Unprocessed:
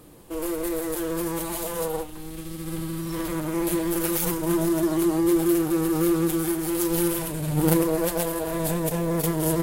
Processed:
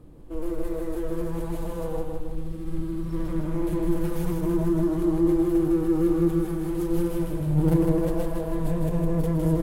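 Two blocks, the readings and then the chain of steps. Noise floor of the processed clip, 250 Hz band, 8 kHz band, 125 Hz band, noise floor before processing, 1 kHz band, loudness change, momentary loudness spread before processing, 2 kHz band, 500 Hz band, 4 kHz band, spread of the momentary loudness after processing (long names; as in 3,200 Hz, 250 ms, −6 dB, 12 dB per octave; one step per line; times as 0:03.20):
−33 dBFS, 0.0 dB, below −15 dB, +3.0 dB, −37 dBFS, −6.0 dB, −1.5 dB, 10 LU, −9.0 dB, −1.5 dB, below −10 dB, 11 LU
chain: spectral tilt −3.5 dB per octave
repeating echo 157 ms, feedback 50%, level −4 dB
level −8 dB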